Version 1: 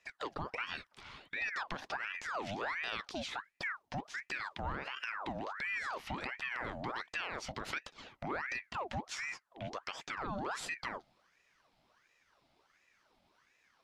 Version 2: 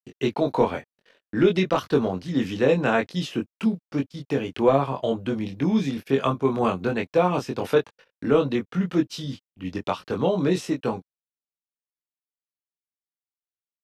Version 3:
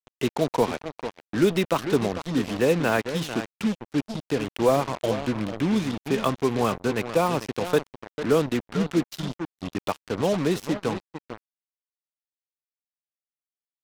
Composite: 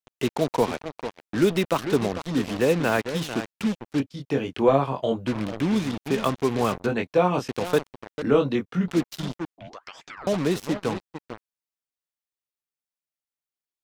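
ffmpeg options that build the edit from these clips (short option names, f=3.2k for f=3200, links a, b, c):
-filter_complex "[1:a]asplit=3[a][b][c];[2:a]asplit=5[d][e][f][g][h];[d]atrim=end=4.002[i];[a]atrim=start=3.998:end=5.272[j];[e]atrim=start=5.268:end=6.862[k];[b]atrim=start=6.858:end=7.482[l];[f]atrim=start=7.478:end=8.222[m];[c]atrim=start=8.218:end=8.882[n];[g]atrim=start=8.878:end=9.582[o];[0:a]atrim=start=9.578:end=10.272[p];[h]atrim=start=10.268[q];[i][j]acrossfade=d=0.004:c1=hsin:c2=hsin[r];[r][k]acrossfade=d=0.004:c1=hsin:c2=hsin[s];[s][l]acrossfade=d=0.004:c1=hsin:c2=hsin[t];[t][m]acrossfade=d=0.004:c1=hsin:c2=hsin[u];[u][n]acrossfade=d=0.004:c1=hsin:c2=hsin[v];[v][o]acrossfade=d=0.004:c1=hsin:c2=hsin[w];[w][p]acrossfade=d=0.004:c1=hsin:c2=hsin[x];[x][q]acrossfade=d=0.004:c1=hsin:c2=hsin"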